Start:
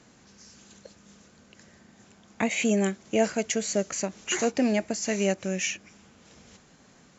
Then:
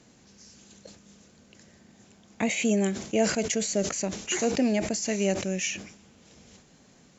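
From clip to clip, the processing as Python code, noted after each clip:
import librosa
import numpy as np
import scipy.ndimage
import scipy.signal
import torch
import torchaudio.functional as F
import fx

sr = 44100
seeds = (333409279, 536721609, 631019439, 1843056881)

y = fx.peak_eq(x, sr, hz=1300.0, db=-5.5, octaves=1.3)
y = fx.sustainer(y, sr, db_per_s=86.0)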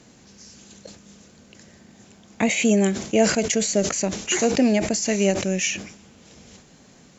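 y = fx.end_taper(x, sr, db_per_s=170.0)
y = F.gain(torch.from_numpy(y), 6.0).numpy()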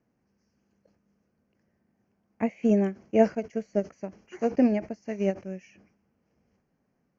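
y = scipy.signal.lfilter(np.full(12, 1.0 / 12), 1.0, x)
y = fx.upward_expand(y, sr, threshold_db=-29.0, expansion=2.5)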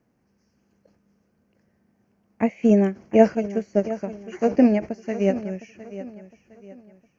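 y = fx.echo_feedback(x, sr, ms=710, feedback_pct=36, wet_db=-14.5)
y = F.gain(torch.from_numpy(y), 5.5).numpy()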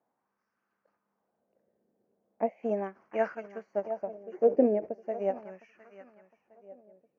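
y = fx.wah_lfo(x, sr, hz=0.38, low_hz=470.0, high_hz=1300.0, q=2.5)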